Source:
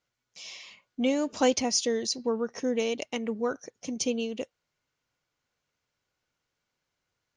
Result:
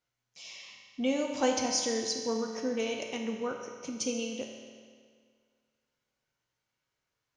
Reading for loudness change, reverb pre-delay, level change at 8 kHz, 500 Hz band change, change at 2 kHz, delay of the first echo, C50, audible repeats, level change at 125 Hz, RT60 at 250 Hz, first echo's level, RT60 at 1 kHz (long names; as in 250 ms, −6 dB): −3.0 dB, 7 ms, −2.0 dB, −3.5 dB, −2.0 dB, no echo audible, 3.0 dB, no echo audible, can't be measured, 1.9 s, no echo audible, 1.9 s